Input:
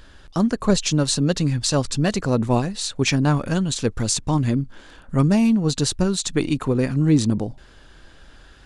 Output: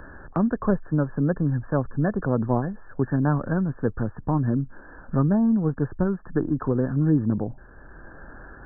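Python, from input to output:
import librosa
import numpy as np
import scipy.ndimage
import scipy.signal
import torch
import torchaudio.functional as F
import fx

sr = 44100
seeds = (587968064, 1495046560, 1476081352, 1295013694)

y = fx.brickwall_lowpass(x, sr, high_hz=1800.0)
y = fx.band_squash(y, sr, depth_pct=40)
y = y * 10.0 ** (-3.0 / 20.0)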